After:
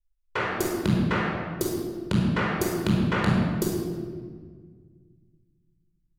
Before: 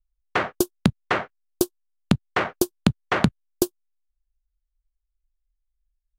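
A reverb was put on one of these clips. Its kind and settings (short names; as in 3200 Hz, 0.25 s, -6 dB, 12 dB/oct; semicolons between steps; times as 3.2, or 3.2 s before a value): shoebox room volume 2200 m³, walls mixed, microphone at 4.8 m; gain -9.5 dB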